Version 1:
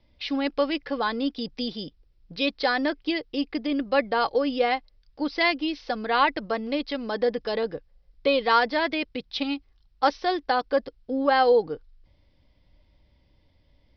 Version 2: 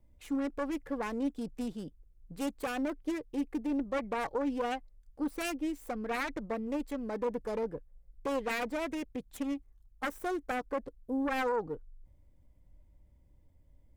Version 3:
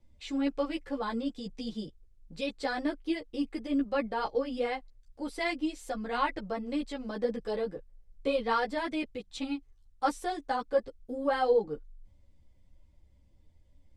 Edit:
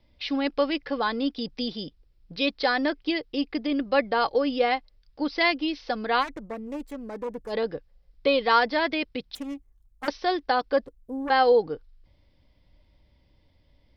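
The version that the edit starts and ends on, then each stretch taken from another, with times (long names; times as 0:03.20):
1
0:06.22–0:07.52: punch in from 2, crossfade 0.06 s
0:09.35–0:10.08: punch in from 2
0:10.86–0:11.30: punch in from 2
not used: 3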